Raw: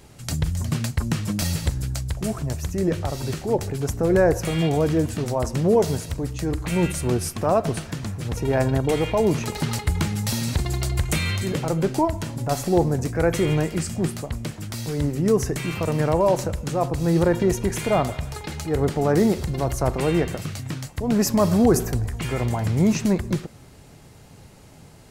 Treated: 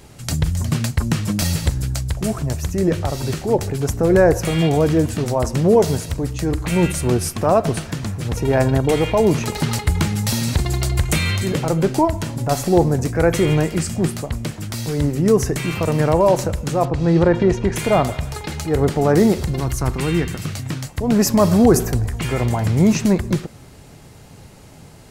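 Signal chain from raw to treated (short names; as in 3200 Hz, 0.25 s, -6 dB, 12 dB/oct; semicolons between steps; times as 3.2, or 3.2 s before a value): 16.85–17.76 LPF 4000 Hz 12 dB/oct; 19.6–20.43 bell 600 Hz -13 dB 0.92 oct; gain +4.5 dB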